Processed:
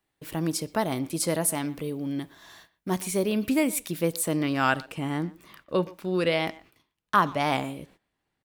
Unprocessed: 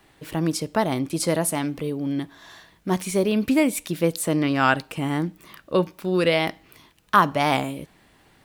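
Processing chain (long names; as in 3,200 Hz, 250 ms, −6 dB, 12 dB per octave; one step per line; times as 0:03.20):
noise gate −48 dBFS, range −19 dB
high-shelf EQ 8,800 Hz +8.5 dB, from 0:04.77 −3 dB
far-end echo of a speakerphone 120 ms, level −19 dB
level −4.5 dB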